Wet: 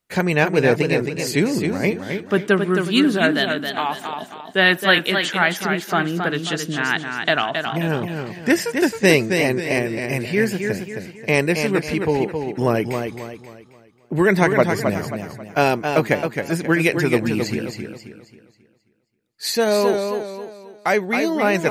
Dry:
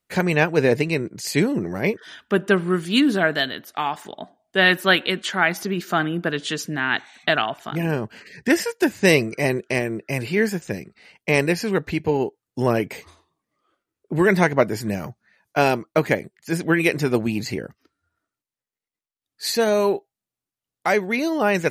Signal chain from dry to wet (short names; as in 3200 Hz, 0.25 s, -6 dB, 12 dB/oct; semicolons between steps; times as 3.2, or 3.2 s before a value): warbling echo 0.268 s, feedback 38%, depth 74 cents, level -6 dB; gain +1 dB